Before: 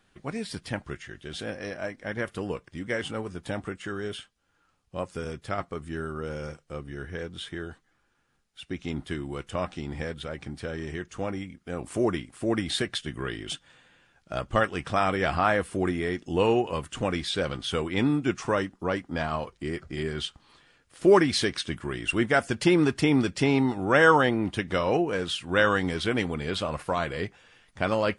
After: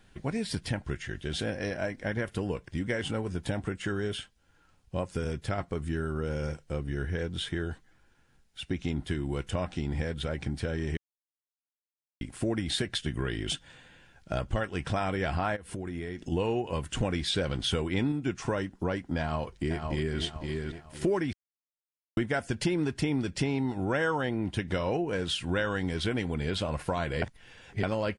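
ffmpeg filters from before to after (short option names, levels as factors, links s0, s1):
-filter_complex "[0:a]asplit=3[s0][s1][s2];[s0]afade=t=out:st=15.55:d=0.02[s3];[s1]acompressor=threshold=0.0141:ratio=20:attack=3.2:release=140:knee=1:detection=peak,afade=t=in:st=15.55:d=0.02,afade=t=out:st=16.31:d=0.02[s4];[s2]afade=t=in:st=16.31:d=0.02[s5];[s3][s4][s5]amix=inputs=3:normalize=0,asplit=2[s6][s7];[s7]afade=t=in:st=19.19:d=0.01,afade=t=out:st=20.2:d=0.01,aecho=0:1:510|1020|1530|2040:0.398107|0.119432|0.0358296|0.0107489[s8];[s6][s8]amix=inputs=2:normalize=0,asplit=9[s9][s10][s11][s12][s13][s14][s15][s16][s17];[s9]atrim=end=10.97,asetpts=PTS-STARTPTS,afade=t=out:st=10.966:d=0.004:c=hsin[s18];[s10]atrim=start=10.97:end=12.21,asetpts=PTS-STARTPTS,volume=0[s19];[s11]atrim=start=12.21:end=17.012,asetpts=PTS-STARTPTS,afade=t=in:d=0.004:c=hsin[s20];[s12]atrim=start=17.008:end=18.122,asetpts=PTS-STARTPTS,volume=1.58[s21];[s13]atrim=start=18.118:end=21.33,asetpts=PTS-STARTPTS,afade=t=out:st=3.208:d=0.004:c=hsin[s22];[s14]atrim=start=21.33:end=22.17,asetpts=PTS-STARTPTS,volume=0[s23];[s15]atrim=start=22.17:end=27.222,asetpts=PTS-STARTPTS,afade=t=in:d=0.004:c=hsin[s24];[s16]atrim=start=27.218:end=27.832,asetpts=PTS-STARTPTS,areverse[s25];[s17]atrim=start=27.828[s26];[s18][s19][s20]concat=n=3:v=0:a=1[s27];[s27][s21]acrossfade=d=0.004:c1=hsin:c2=hsin[s28];[s22][s23][s24]concat=n=3:v=0:a=1[s29];[s28][s29]acrossfade=d=0.004:c1=hsin:c2=hsin[s30];[s30][s25]acrossfade=d=0.004:c1=hsin:c2=hsin[s31];[s31][s26]acrossfade=d=0.004:c1=hsin:c2=hsin,lowshelf=f=130:g=9,bandreject=f=1200:w=7.3,acompressor=threshold=0.0282:ratio=4,volume=1.5"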